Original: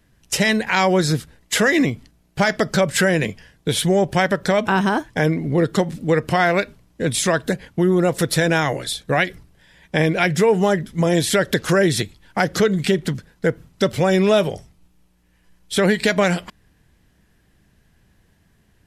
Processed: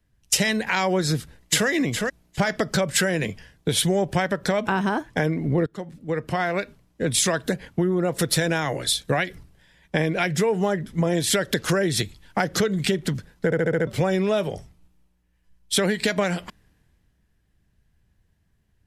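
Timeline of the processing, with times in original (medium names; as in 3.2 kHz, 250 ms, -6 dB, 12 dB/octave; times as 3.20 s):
1.11–1.68 s: echo throw 410 ms, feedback 15%, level -8 dB
5.66–8.16 s: fade in equal-power, from -19 dB
13.45 s: stutter in place 0.07 s, 6 plays
whole clip: compression 5:1, threshold -22 dBFS; three bands expanded up and down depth 40%; trim +2.5 dB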